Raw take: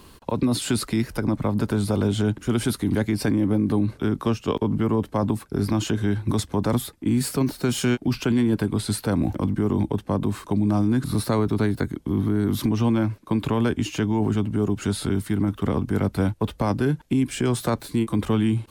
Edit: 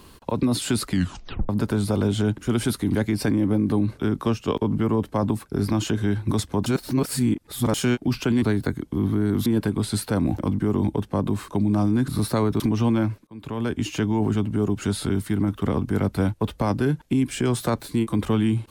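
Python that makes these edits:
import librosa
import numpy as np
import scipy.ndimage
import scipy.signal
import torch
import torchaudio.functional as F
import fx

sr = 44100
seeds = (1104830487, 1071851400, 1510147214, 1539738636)

y = fx.edit(x, sr, fx.tape_stop(start_s=0.89, length_s=0.6),
    fx.reverse_span(start_s=6.66, length_s=1.08),
    fx.move(start_s=11.56, length_s=1.04, to_s=8.42),
    fx.fade_in_span(start_s=13.27, length_s=0.61), tone=tone)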